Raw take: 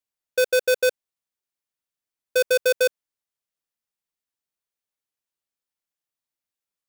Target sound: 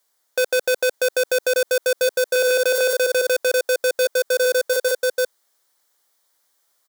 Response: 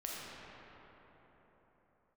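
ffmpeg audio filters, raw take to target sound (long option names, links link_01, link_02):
-af "equalizer=frequency=2600:width_type=o:width=0.35:gain=-13.5,aecho=1:1:640|1184|1646|2039|2374:0.631|0.398|0.251|0.158|0.1,asoftclip=type=tanh:threshold=-28dB,highpass=430,alimiter=level_in=28.5dB:limit=-1dB:release=50:level=0:latency=1,volume=-7.5dB"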